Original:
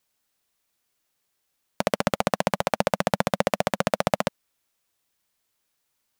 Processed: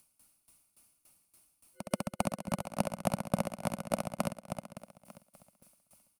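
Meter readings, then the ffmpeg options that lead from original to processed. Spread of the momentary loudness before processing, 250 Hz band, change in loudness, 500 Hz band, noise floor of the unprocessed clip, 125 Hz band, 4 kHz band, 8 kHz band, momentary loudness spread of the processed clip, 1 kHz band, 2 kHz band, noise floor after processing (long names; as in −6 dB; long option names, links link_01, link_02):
4 LU, −6.0 dB, −10.5 dB, −11.5 dB, −76 dBFS, −5.5 dB, −14.5 dB, −6.0 dB, 14 LU, −11.5 dB, −15.5 dB, −77 dBFS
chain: -filter_complex "[0:a]acrossover=split=350[link_01][link_02];[link_01]acontrast=82[link_03];[link_03][link_02]amix=inputs=2:normalize=0,superequalizer=7b=0.447:11b=0.398:13b=0.562:16b=3.55,acompressor=mode=upward:threshold=-39dB:ratio=2.5,aecho=1:1:449|898|1347|1796:0.447|0.13|0.0376|0.0109,aeval=exprs='val(0)*pow(10,-19*if(lt(mod(3.5*n/s,1),2*abs(3.5)/1000),1-mod(3.5*n/s,1)/(2*abs(3.5)/1000),(mod(3.5*n/s,1)-2*abs(3.5)/1000)/(1-2*abs(3.5)/1000))/20)':channel_layout=same,volume=-6.5dB"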